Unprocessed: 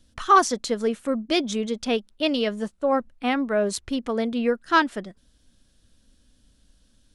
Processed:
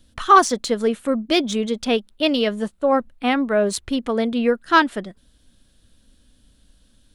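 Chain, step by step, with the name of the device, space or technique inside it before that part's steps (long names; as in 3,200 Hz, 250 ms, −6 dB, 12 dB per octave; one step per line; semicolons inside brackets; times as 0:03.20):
exciter from parts (in parallel at −8.5 dB: high-pass filter 4,000 Hz 24 dB per octave + soft clipping −33.5 dBFS, distortion −7 dB + high-pass filter 2,500 Hz 24 dB per octave)
on the sum: level +4 dB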